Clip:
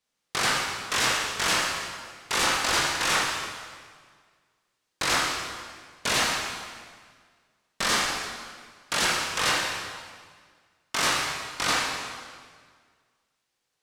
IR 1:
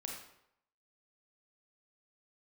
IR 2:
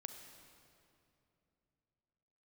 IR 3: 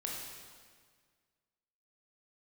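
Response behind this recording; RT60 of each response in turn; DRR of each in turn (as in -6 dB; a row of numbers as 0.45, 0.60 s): 3; 0.75, 2.8, 1.7 s; -0.5, 6.0, -2.5 dB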